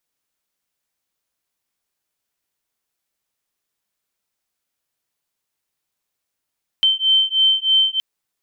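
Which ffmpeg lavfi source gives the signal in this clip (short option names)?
-f lavfi -i "aevalsrc='0.15*(sin(2*PI*3100*t)+sin(2*PI*3103.2*t))':d=1.17:s=44100"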